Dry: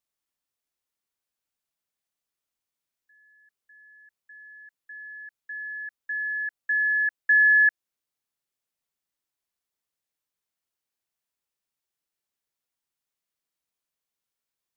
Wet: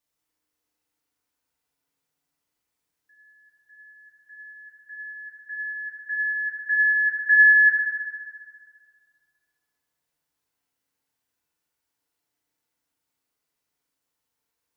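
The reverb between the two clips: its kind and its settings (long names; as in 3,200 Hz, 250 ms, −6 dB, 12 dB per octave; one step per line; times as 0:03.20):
feedback delay network reverb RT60 2.2 s, low-frequency decay 1.05×, high-frequency decay 0.35×, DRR −5.5 dB
level +1 dB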